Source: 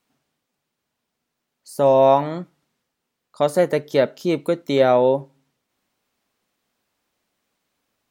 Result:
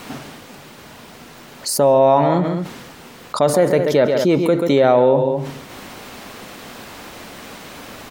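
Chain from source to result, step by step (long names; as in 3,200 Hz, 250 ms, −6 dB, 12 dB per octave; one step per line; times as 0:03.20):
high-shelf EQ 4,000 Hz −7 dB
on a send: multi-tap delay 135/203 ms −14.5/−19.5 dB
on the sum: envelope flattener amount 70%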